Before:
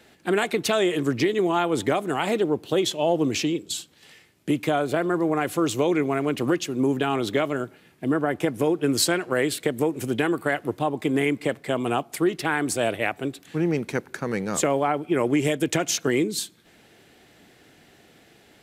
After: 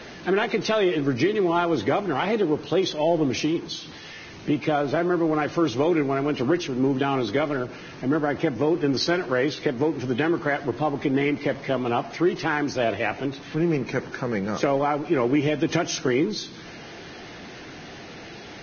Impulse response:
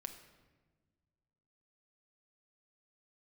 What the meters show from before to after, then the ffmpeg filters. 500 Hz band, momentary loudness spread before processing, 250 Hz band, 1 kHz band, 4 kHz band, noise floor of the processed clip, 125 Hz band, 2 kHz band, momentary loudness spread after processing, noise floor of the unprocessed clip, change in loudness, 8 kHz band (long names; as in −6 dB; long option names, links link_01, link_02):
+0.5 dB, 6 LU, +1.0 dB, +0.5 dB, −1.0 dB, −41 dBFS, +1.0 dB, 0.0 dB, 17 LU, −56 dBFS, 0.0 dB, −8.5 dB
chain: -filter_complex "[0:a]aeval=exprs='val(0)+0.5*0.0188*sgn(val(0))':channel_layout=same,lowpass=frequency=3200:poles=1,asplit=2[link_01][link_02];[1:a]atrim=start_sample=2205[link_03];[link_02][link_03]afir=irnorm=-1:irlink=0,volume=-4.5dB[link_04];[link_01][link_04]amix=inputs=2:normalize=0,volume=-3dB" -ar 16000 -c:a libvorbis -b:a 16k